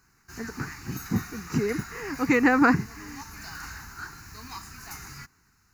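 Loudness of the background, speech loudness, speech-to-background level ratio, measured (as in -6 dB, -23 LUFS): -41.0 LUFS, -25.0 LUFS, 16.0 dB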